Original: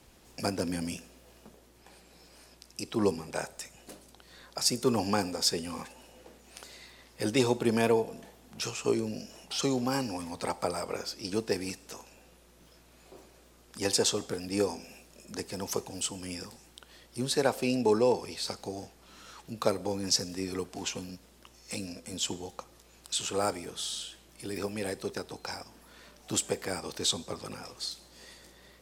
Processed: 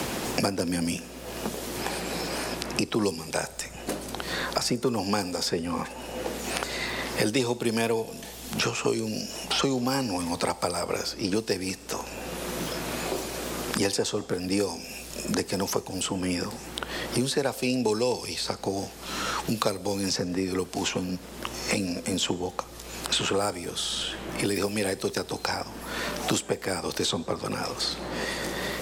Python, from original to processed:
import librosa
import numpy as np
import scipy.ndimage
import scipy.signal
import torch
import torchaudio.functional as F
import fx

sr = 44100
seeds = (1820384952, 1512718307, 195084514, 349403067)

y = fx.band_squash(x, sr, depth_pct=100)
y = y * 10.0 ** (5.0 / 20.0)